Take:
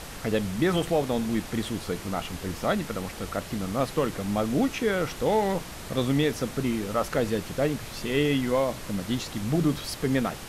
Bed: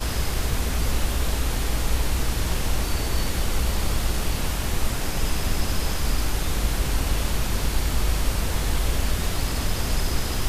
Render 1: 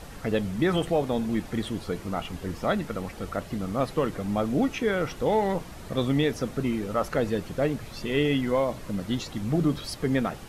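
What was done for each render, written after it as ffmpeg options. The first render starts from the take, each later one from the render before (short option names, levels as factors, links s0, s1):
-af "afftdn=nr=8:nf=-40"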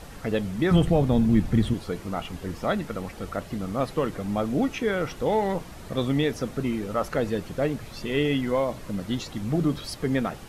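-filter_complex "[0:a]asettb=1/sr,asplit=3[s0][s1][s2];[s0]atrim=end=0.714[s3];[s1]atrim=start=0.71:end=1.74,asetpts=PTS-STARTPTS,afade=t=in:d=0.004:c=qsin,afade=t=out:st=1.026:d=0.004:c=qsin,bass=f=250:g=13,treble=f=4000:g=-1[s4];[s2]atrim=start=1.736[s5];[s3][s4]acrossfade=d=0.004:c1=hsin:c2=qsin[s6];[s6][s5]acrossfade=d=0.004:c1=qsin:c2=hsin"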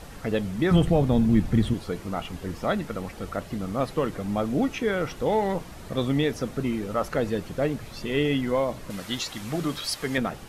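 -filter_complex "[0:a]asettb=1/sr,asplit=3[s0][s1][s2];[s0]atrim=end=8.904[s3];[s1]atrim=start=8.9:end=10.18,asetpts=PTS-STARTPTS,afade=t=in:d=0.004:c=qsin,afade=t=out:st=1.276:d=0.004:c=qsin,tiltshelf=f=630:g=-7[s4];[s2]atrim=start=10.176[s5];[s3][s4]acrossfade=d=0.004:c1=hsin:c2=qsin[s6];[s6][s5]acrossfade=d=0.004:c1=qsin:c2=hsin"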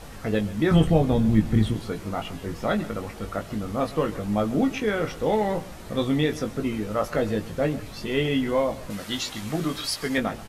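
-filter_complex "[0:a]asplit=2[s0][s1];[s1]adelay=19,volume=0.562[s2];[s0][s2]amix=inputs=2:normalize=0,aecho=1:1:134:0.126"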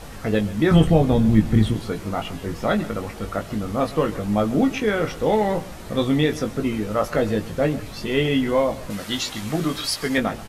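-af "volume=1.5,alimiter=limit=0.708:level=0:latency=1"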